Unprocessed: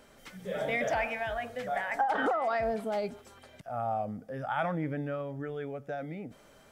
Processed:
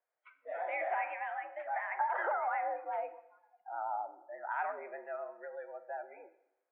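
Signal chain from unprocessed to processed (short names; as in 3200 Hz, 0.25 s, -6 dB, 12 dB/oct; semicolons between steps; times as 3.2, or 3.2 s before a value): vibrato 8.3 Hz 61 cents; spectral noise reduction 26 dB; plate-style reverb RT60 0.83 s, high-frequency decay 0.9×, DRR 10 dB; mistuned SSB +86 Hz 400–2200 Hz; gain -4.5 dB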